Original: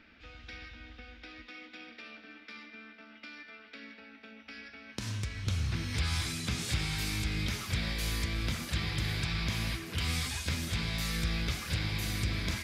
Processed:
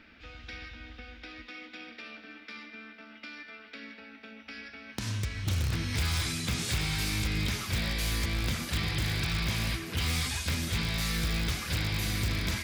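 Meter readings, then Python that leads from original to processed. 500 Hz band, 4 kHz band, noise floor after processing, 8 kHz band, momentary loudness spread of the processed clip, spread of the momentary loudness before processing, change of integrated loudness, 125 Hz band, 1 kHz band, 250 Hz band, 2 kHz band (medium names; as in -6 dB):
+3.0 dB, +3.0 dB, -52 dBFS, +3.5 dB, 16 LU, 17 LU, +2.5 dB, +2.5 dB, +3.0 dB, +2.5 dB, +3.0 dB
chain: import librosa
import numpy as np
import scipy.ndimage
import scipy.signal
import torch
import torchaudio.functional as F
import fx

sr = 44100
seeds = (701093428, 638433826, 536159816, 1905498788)

p1 = (np.mod(10.0 ** (25.5 / 20.0) * x + 1.0, 2.0) - 1.0) / 10.0 ** (25.5 / 20.0)
y = x + F.gain(torch.from_numpy(p1), -7.0).numpy()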